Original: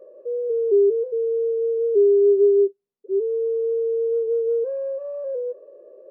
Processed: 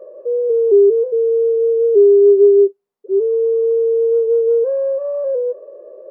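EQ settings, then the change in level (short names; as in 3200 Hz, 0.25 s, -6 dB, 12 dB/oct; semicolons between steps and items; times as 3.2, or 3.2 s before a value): bell 870 Hz +10.5 dB 2.1 oct; +1.5 dB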